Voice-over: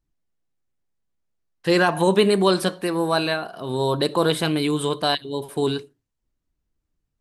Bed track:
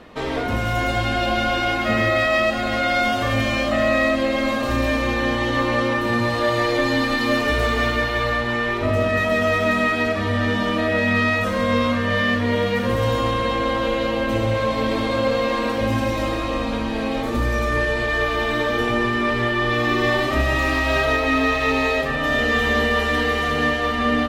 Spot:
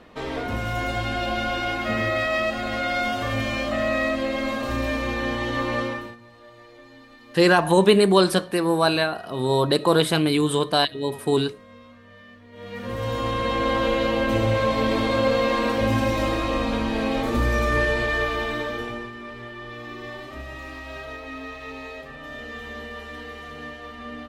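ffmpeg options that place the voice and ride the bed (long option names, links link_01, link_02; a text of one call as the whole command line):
ffmpeg -i stem1.wav -i stem2.wav -filter_complex "[0:a]adelay=5700,volume=1.5dB[link_01];[1:a]volume=22.5dB,afade=type=out:start_time=5.8:duration=0.36:silence=0.0707946,afade=type=in:start_time=12.52:duration=1.24:silence=0.0421697,afade=type=out:start_time=17.86:duration=1.26:silence=0.149624[link_02];[link_01][link_02]amix=inputs=2:normalize=0" out.wav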